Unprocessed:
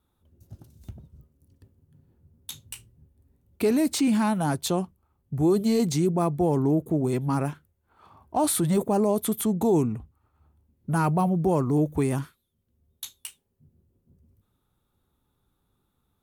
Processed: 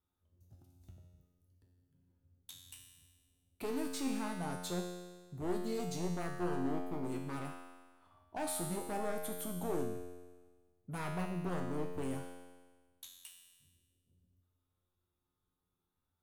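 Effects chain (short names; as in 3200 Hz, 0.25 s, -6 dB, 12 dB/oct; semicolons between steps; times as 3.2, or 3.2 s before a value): one-sided fold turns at -19.5 dBFS; bell 200 Hz -2.5 dB 0.77 oct; resonator 89 Hz, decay 1.4 s, harmonics all, mix 90%; gain +1.5 dB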